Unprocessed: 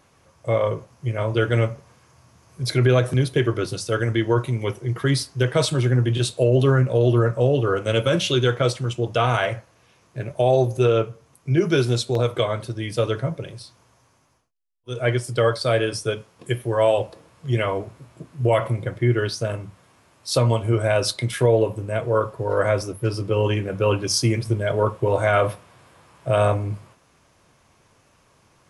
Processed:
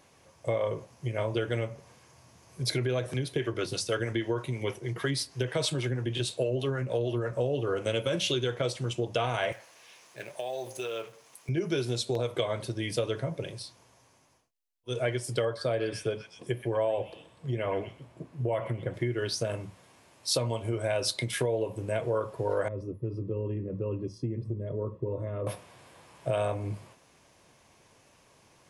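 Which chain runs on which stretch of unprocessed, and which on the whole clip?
3.06–7.32 bell 2200 Hz +3 dB 2.4 oct + harmonic tremolo 6.3 Hz, depth 50%, crossover 460 Hz
9.52–11.49 G.711 law mismatch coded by mu + HPF 1200 Hz 6 dB/oct + compressor 10:1, threshold -29 dBFS
15.45–18.94 high shelf 2200 Hz -11 dB + delay with a stepping band-pass 0.123 s, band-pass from 2100 Hz, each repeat 0.7 oct, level -8 dB
22.68–25.47 compressor 1.5:1, threshold -25 dBFS + running mean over 58 samples
whole clip: bell 1300 Hz -6.5 dB 0.51 oct; compressor, threshold -24 dBFS; low shelf 180 Hz -7 dB

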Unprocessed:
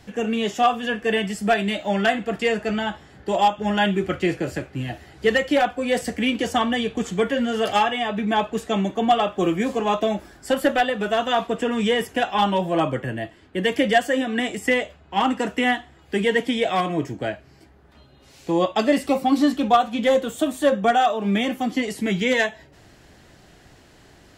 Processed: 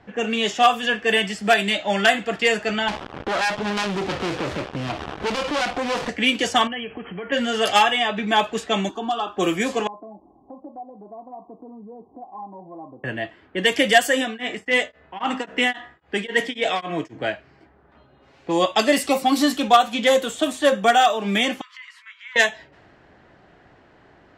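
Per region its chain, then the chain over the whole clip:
2.88–6.09 sample leveller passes 5 + compressor, threshold -24 dBFS + running maximum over 17 samples
6.67–7.32 brick-wall FIR low-pass 3300 Hz + compressor 16:1, threshold -27 dBFS
8.89–9.37 compressor 2:1, threshold -22 dBFS + fixed phaser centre 560 Hz, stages 6
9.87–13.04 rippled Chebyshev low-pass 1100 Hz, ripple 9 dB + compressor 2:1, threshold -47 dBFS
14.25–17.24 de-hum 65 Hz, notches 32 + beating tremolo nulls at 3.7 Hz
21.61–22.36 compressor 16:1, threshold -29 dBFS + brick-wall FIR high-pass 950 Hz
whole clip: low-pass opened by the level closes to 1300 Hz, open at -16 dBFS; tilt +2.5 dB/oct; gain +3 dB

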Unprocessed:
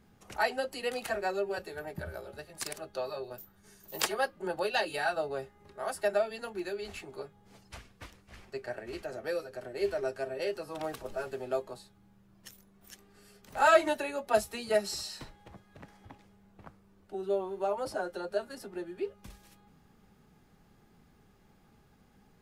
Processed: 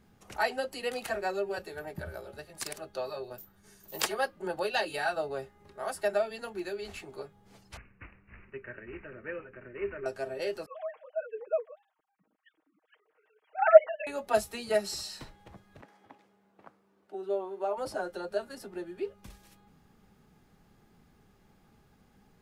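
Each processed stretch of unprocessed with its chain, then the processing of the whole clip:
7.77–10.06 high shelf 4900 Hz +8.5 dB + fixed phaser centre 1800 Hz, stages 4 + careless resampling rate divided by 8×, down none, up filtered
10.66–14.07 sine-wave speech + LPF 3000 Hz + comb 6.4 ms, depth 74%
15.81–17.77 HPF 300 Hz + high shelf 3000 Hz -7.5 dB
whole clip: dry

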